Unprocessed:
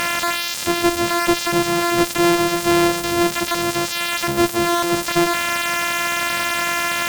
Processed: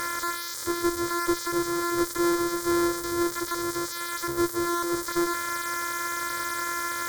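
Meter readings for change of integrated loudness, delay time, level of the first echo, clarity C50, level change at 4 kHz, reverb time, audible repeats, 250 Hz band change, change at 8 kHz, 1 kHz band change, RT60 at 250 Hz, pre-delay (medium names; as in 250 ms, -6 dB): -9.0 dB, no echo, no echo, no reverb, -13.0 dB, no reverb, no echo, -7.5 dB, -7.5 dB, -8.0 dB, no reverb, no reverb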